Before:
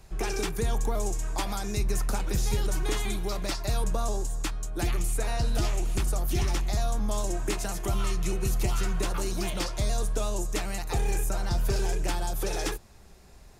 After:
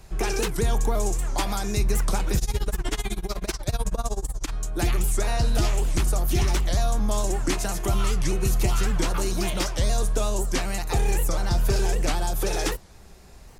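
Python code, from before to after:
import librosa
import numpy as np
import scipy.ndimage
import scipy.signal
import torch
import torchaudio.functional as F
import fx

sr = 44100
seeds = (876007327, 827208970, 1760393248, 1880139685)

y = fx.tremolo(x, sr, hz=16.0, depth=0.94, at=(2.38, 4.51), fade=0.02)
y = fx.record_warp(y, sr, rpm=78.0, depth_cents=250.0)
y = F.gain(torch.from_numpy(y), 4.5).numpy()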